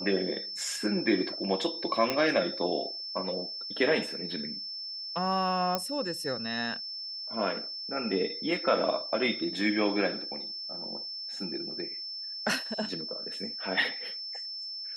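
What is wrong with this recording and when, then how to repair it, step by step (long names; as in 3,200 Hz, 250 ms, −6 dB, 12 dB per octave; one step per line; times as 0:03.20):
whistle 5,300 Hz −36 dBFS
0:02.10: click −13 dBFS
0:05.75: click −13 dBFS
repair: click removal
notch filter 5,300 Hz, Q 30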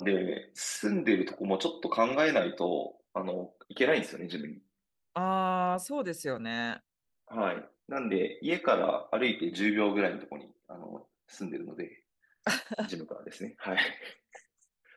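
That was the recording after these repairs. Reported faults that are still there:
none of them is left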